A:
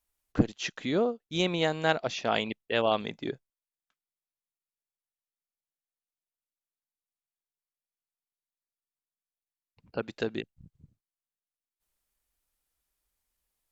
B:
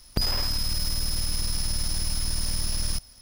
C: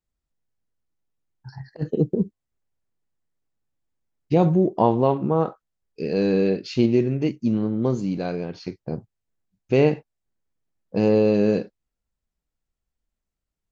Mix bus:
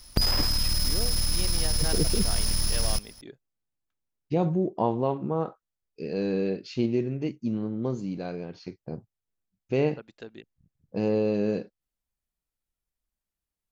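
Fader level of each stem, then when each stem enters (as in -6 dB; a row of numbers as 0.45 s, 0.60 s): -11.5 dB, +1.5 dB, -7.0 dB; 0.00 s, 0.00 s, 0.00 s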